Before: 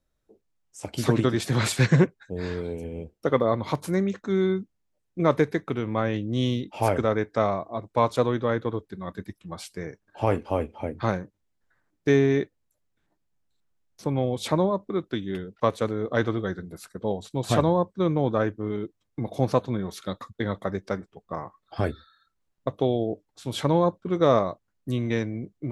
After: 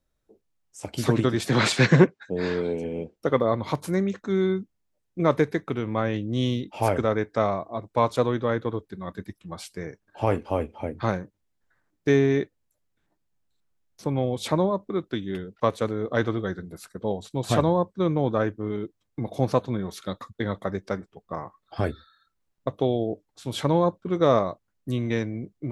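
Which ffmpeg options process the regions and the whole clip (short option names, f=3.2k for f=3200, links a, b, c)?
-filter_complex "[0:a]asettb=1/sr,asplit=3[a][b][c];[a]atrim=end=1.494[d];[b]atrim=start=1.49:end=3.16,asetpts=PTS-STARTPTS,afade=t=in:d=0.004:c=qsin,afade=t=out:st=1.666:d=0.004:c=qsin,acontrast=45,highpass=170,lowpass=6k[e];[c]atrim=start=3.156[f];[d][e]acrossfade=d=0.004:c1=hsin:c2=qsin[g];[g][f]acrossfade=d=0.004:c1=qsin:c2=hsin"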